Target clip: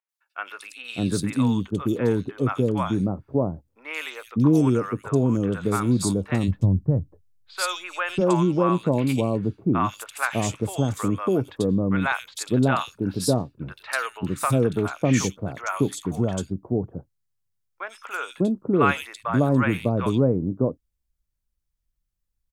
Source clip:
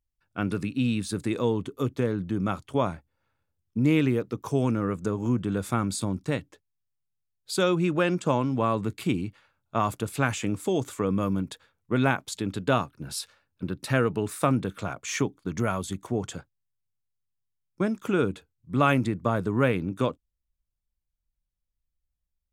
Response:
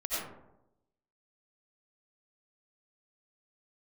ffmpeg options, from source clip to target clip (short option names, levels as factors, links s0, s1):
-filter_complex "[0:a]asplit=3[s0][s1][s2];[s0]afade=t=out:st=5.87:d=0.02[s3];[s1]asubboost=boost=6.5:cutoff=110,afade=t=in:st=5.87:d=0.02,afade=t=out:st=7.6:d=0.02[s4];[s2]afade=t=in:st=7.6:d=0.02[s5];[s3][s4][s5]amix=inputs=3:normalize=0,acrossover=split=740|2900[s6][s7][s8];[s8]adelay=90[s9];[s6]adelay=600[s10];[s10][s7][s9]amix=inputs=3:normalize=0,volume=1.68"